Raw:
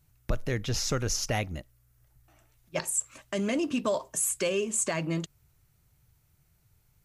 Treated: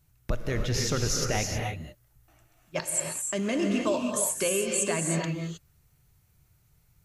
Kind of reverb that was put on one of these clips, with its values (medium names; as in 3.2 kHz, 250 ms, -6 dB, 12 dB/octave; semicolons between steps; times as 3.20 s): gated-style reverb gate 340 ms rising, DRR 2 dB